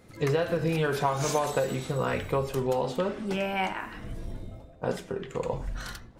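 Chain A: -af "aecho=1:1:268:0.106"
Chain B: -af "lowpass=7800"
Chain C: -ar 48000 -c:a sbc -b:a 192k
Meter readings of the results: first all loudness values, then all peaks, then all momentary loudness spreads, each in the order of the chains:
−29.5, −29.5, −29.5 LKFS; −12.0, −12.0, −12.0 dBFS; 13, 13, 13 LU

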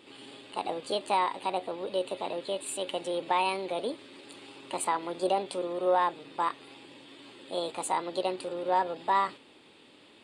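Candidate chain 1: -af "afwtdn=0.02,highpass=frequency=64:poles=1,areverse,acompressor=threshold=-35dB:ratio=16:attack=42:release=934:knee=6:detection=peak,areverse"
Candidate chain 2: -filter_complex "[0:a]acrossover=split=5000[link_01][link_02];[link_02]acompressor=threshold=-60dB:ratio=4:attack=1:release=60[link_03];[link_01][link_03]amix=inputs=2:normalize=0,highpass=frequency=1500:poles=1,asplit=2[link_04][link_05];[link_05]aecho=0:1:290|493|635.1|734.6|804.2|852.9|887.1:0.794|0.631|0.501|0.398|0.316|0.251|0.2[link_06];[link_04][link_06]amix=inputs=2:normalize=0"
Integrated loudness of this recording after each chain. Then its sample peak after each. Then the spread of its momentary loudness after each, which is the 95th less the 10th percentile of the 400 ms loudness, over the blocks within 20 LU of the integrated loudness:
−40.5, −34.0 LKFS; −20.5, −19.0 dBFS; 5, 9 LU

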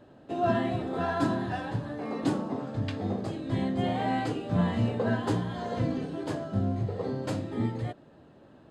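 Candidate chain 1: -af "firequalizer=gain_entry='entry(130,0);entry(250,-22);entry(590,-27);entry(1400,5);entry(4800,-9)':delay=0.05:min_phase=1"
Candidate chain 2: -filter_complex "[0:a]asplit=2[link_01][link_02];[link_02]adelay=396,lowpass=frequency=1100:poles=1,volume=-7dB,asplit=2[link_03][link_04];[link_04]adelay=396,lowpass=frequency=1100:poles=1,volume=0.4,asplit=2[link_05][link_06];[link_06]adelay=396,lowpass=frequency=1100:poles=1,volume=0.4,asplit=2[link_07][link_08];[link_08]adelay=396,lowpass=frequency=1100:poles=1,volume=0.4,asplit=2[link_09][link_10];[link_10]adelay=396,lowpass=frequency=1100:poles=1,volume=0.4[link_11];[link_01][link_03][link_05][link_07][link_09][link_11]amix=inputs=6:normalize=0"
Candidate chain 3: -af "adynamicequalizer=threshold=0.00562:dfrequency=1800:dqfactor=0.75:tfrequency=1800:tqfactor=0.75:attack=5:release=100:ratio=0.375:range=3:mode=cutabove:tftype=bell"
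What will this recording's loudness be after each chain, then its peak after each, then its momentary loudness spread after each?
−36.0, −30.0, −31.0 LKFS; −20.0, −14.0, −14.0 dBFS; 9, 7, 6 LU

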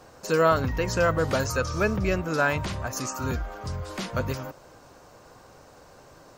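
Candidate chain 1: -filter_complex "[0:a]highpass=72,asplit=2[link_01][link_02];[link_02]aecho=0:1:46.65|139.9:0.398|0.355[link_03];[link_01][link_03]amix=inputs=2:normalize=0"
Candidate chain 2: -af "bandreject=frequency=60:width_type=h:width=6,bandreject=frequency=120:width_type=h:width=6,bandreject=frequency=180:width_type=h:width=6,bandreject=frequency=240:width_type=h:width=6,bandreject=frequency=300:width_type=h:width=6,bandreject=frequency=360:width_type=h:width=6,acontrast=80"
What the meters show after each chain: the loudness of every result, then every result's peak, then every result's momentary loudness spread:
−25.5, −20.0 LKFS; −8.5, −4.5 dBFS; 12, 11 LU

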